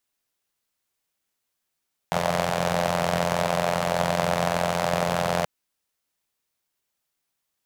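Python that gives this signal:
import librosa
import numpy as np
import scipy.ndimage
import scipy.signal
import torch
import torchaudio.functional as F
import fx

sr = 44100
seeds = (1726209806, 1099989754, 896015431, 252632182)

y = fx.engine_four(sr, seeds[0], length_s=3.33, rpm=2600, resonances_hz=(160.0, 610.0))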